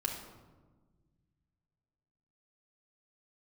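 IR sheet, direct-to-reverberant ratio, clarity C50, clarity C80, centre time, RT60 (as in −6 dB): 0.5 dB, 5.0 dB, 7.5 dB, 38 ms, 1.4 s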